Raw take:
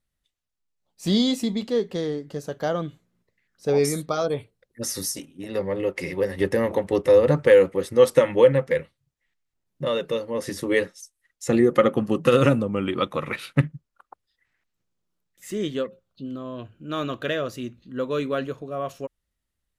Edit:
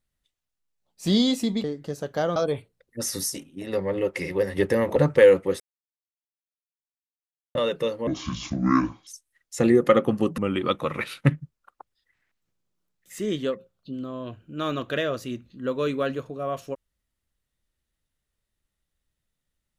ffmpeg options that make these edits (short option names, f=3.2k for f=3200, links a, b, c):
-filter_complex "[0:a]asplit=9[a][b][c][d][e][f][g][h][i];[a]atrim=end=1.642[j];[b]atrim=start=2.098:end=2.822[k];[c]atrim=start=4.178:end=6.782[l];[d]atrim=start=7.248:end=7.89,asetpts=PTS-STARTPTS,afade=t=out:st=0.638:d=0.004:c=hsin[m];[e]atrim=start=7.89:end=9.84,asetpts=PTS-STARTPTS,volume=0[n];[f]atrim=start=9.84:end=10.364,asetpts=PTS-STARTPTS,afade=t=in:d=0.004:c=hsin[o];[g]atrim=start=10.36:end=10.96,asetpts=PTS-STARTPTS,asetrate=26460,aresample=44100[p];[h]atrim=start=10.956:end=12.272[q];[i]atrim=start=12.698[r];[j][k]acrossfade=d=0.004:c1=hsin:c2=hsin[s];[s][l]acrossfade=d=0.004:c1=hsin:c2=hsin[t];[m][n][o]concat=n=3:v=0:a=1[u];[t][u]acrossfade=d=0.004:c1=hsin:c2=hsin[v];[v][p]acrossfade=d=0.004:c1=hsin:c2=hsin[w];[w][q]acrossfade=d=0.004:c1=hsin:c2=hsin[x];[x][r]acrossfade=d=0.004:c1=hsin:c2=hsin"